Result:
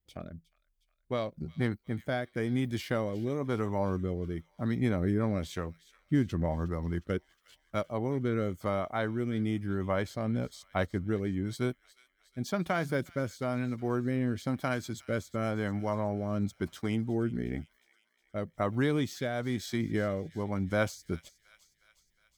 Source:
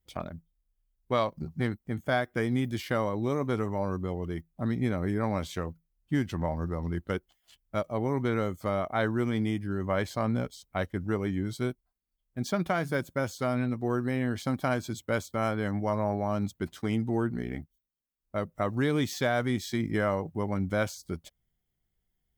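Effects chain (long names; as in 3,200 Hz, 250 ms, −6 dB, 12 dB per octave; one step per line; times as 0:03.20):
speech leveller 2 s
rotating-speaker cabinet horn 1 Hz, later 7.5 Hz, at 0:20.75
on a send: delay with a high-pass on its return 361 ms, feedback 59%, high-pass 2,300 Hz, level −16 dB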